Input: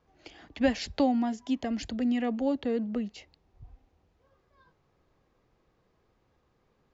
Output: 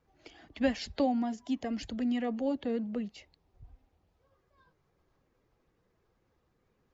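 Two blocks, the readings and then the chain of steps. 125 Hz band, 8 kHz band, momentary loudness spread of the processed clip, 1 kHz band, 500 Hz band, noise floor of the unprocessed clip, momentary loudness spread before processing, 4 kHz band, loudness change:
-3.5 dB, n/a, 7 LU, -3.0 dB, -3.0 dB, -71 dBFS, 7 LU, -3.5 dB, -3.5 dB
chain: bin magnitudes rounded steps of 15 dB; gain -3 dB

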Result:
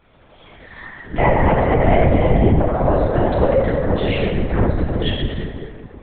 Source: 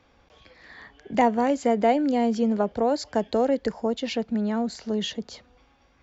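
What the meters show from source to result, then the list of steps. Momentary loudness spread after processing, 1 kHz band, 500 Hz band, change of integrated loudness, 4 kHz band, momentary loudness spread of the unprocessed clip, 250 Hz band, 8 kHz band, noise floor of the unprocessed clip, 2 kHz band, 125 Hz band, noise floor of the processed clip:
15 LU, +5.5 dB, +7.0 dB, +7.0 dB, +4.5 dB, 7 LU, +4.0 dB, n/a, -61 dBFS, +10.5 dB, +22.5 dB, -49 dBFS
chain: dynamic EQ 1900 Hz, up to +7 dB, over -47 dBFS, Q 1.6; in parallel at 0 dB: compressor, threshold -30 dBFS, peak gain reduction 15 dB; on the sum: plate-style reverb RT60 2.5 s, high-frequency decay 0.45×, pre-delay 0 ms, DRR -7.5 dB; LPC vocoder at 8 kHz whisper; gain -3.5 dB

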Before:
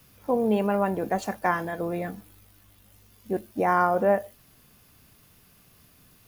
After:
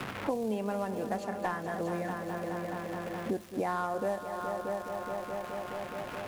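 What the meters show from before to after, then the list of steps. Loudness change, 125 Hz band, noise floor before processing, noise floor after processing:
-9.0 dB, -5.0 dB, -58 dBFS, -42 dBFS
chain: CVSD 64 kbps; crackle 390/s -36 dBFS; on a send: multi-head echo 0.211 s, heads all three, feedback 47%, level -14.5 dB; on the sum: three-band squash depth 100%; gain -8.5 dB

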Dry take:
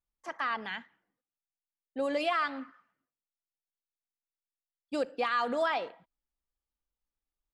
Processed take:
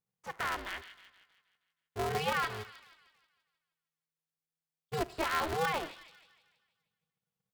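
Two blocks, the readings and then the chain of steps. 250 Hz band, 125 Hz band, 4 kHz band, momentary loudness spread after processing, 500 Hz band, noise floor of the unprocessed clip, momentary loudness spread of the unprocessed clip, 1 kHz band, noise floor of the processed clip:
-5.5 dB, n/a, +0.5 dB, 16 LU, -4.0 dB, under -85 dBFS, 15 LU, -2.0 dB, under -85 dBFS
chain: thin delay 0.158 s, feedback 50%, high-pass 2500 Hz, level -7 dB; polarity switched at an audio rate 160 Hz; gain -2.5 dB

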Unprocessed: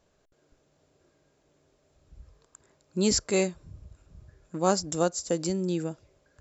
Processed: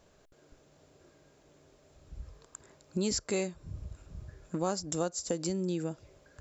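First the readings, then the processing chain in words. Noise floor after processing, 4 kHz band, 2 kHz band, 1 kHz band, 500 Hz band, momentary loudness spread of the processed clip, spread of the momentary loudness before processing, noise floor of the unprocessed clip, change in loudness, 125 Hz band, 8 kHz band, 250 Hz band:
-64 dBFS, -6.5 dB, -7.0 dB, -8.0 dB, -6.5 dB, 18 LU, 13 LU, -69 dBFS, -6.5 dB, -4.0 dB, n/a, -5.0 dB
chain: compressor 3:1, threshold -38 dBFS, peak gain reduction 15 dB; gain +5.5 dB

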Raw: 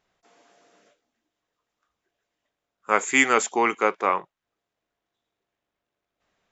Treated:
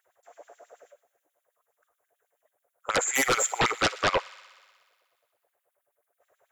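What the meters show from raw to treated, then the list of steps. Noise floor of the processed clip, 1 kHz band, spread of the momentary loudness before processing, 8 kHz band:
-81 dBFS, -5.0 dB, 7 LU, n/a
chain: EQ curve 120 Hz 0 dB, 180 Hz -27 dB, 540 Hz -15 dB, 1100 Hz -28 dB, 2100 Hz -20 dB, 3200 Hz -19 dB, 4900 Hz -23 dB, 10000 Hz +3 dB; LFO high-pass sine 9.3 Hz 490–3800 Hz; resonant high shelf 1900 Hz -12 dB, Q 1.5; sine folder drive 17 dB, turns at -22.5 dBFS; thin delay 61 ms, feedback 78%, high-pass 1500 Hz, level -18 dB; gain +4.5 dB

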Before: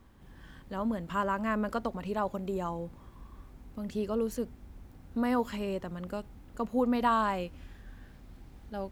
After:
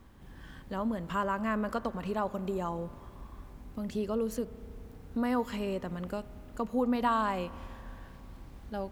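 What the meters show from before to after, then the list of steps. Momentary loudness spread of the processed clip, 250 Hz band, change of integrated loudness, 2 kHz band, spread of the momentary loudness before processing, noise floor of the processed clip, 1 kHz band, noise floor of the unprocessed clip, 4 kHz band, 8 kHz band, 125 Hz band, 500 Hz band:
20 LU, -0.5 dB, -0.5 dB, -1.0 dB, 24 LU, -51 dBFS, -1.0 dB, -54 dBFS, 0.0 dB, 0.0 dB, +0.5 dB, -0.5 dB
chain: in parallel at 0 dB: compressor, threshold -36 dBFS, peak gain reduction 13 dB; on the sum: spring tank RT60 3.3 s, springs 32 ms, chirp 70 ms, DRR 16.5 dB; gain -3.5 dB

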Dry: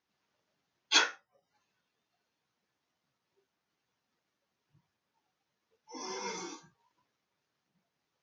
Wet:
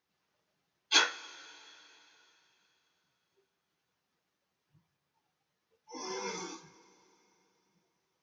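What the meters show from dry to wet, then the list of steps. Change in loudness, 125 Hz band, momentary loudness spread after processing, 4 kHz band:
0.0 dB, +2.0 dB, 24 LU, +0.5 dB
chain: two-slope reverb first 0.22 s, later 3.4 s, from -18 dB, DRR 9 dB

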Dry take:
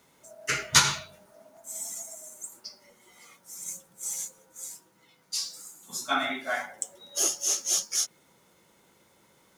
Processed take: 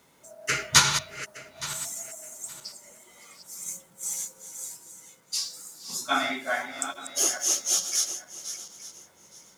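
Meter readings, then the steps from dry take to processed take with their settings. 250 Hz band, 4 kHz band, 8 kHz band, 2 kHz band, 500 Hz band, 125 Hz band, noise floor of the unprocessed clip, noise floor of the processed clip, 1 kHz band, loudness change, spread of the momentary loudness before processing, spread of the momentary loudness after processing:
+2.0 dB, +2.0 dB, +2.0 dB, +2.0 dB, +2.0 dB, +2.0 dB, -63 dBFS, -59 dBFS, +2.0 dB, +1.0 dB, 18 LU, 18 LU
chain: regenerating reverse delay 0.434 s, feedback 43%, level -10.5 dB; gain +1.5 dB

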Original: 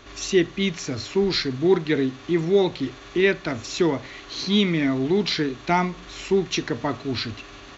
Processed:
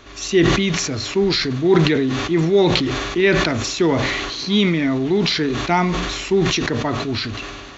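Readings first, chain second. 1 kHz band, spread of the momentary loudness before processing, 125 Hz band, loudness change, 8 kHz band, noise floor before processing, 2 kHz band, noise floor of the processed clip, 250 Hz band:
+5.5 dB, 9 LU, +7.5 dB, +5.0 dB, n/a, -43 dBFS, +6.5 dB, -34 dBFS, +4.5 dB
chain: sustainer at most 28 dB/s; gain +2.5 dB

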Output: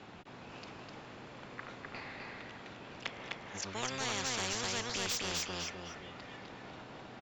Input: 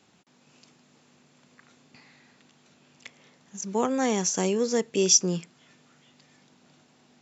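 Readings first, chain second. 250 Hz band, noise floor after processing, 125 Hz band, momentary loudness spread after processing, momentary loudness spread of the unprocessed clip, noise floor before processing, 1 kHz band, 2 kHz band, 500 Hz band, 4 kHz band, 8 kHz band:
-15.5 dB, -51 dBFS, -9.5 dB, 15 LU, 12 LU, -62 dBFS, -6.0 dB, +1.5 dB, -15.0 dB, -4.5 dB, n/a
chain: octaver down 1 oct, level -4 dB; LPF 4900 Hz 12 dB/oct; dynamic EQ 3800 Hz, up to +7 dB, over -49 dBFS, Q 1.1; overdrive pedal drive 8 dB, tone 1200 Hz, clips at -10.5 dBFS; on a send: feedback echo 0.254 s, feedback 16%, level -4 dB; on the sum: spectral compressor 4:1; gain -8 dB

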